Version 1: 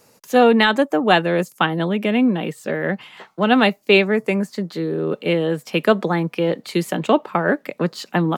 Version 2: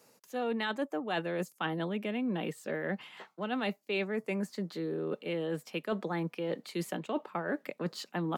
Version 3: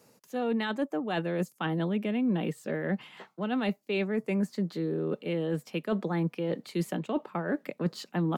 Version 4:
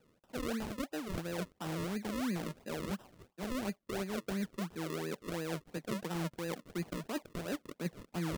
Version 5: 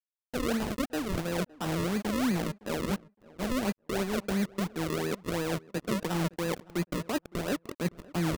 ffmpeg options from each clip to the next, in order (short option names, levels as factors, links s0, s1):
-af "highpass=150,areverse,acompressor=threshold=0.0794:ratio=6,areverse,volume=0.376"
-af "lowshelf=f=280:g=10"
-af "acrusher=samples=39:mix=1:aa=0.000001:lfo=1:lforange=39:lforate=2.9,volume=0.398"
-filter_complex "[0:a]acrusher=bits=6:mix=0:aa=0.5,asplit=2[s0][s1];[s1]adelay=563,lowpass=f=1600:p=1,volume=0.0841,asplit=2[s2][s3];[s3]adelay=563,lowpass=f=1600:p=1,volume=0.18[s4];[s0][s2][s4]amix=inputs=3:normalize=0,volume=2.24"